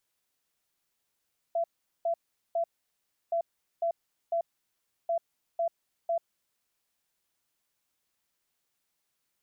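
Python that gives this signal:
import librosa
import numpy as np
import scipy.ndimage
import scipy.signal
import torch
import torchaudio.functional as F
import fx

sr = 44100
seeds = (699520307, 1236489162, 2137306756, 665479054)

y = fx.beep_pattern(sr, wave='sine', hz=674.0, on_s=0.09, off_s=0.41, beeps=3, pause_s=0.68, groups=3, level_db=-25.0)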